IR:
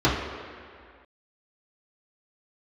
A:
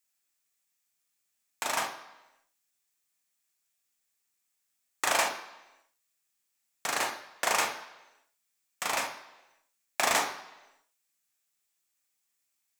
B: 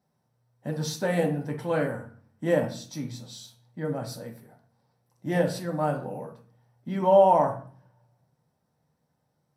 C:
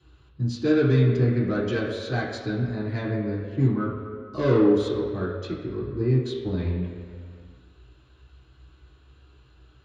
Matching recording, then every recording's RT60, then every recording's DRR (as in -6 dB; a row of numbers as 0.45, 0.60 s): C; 1.0, 0.45, 2.1 s; 3.0, 1.0, -9.0 dB